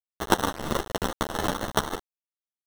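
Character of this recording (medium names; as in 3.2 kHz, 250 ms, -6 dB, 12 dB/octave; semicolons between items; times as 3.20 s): aliases and images of a low sample rate 2.4 kHz, jitter 0%; tremolo triangle 0.83 Hz, depth 50%; a quantiser's noise floor 6-bit, dither none; a shimmering, thickened sound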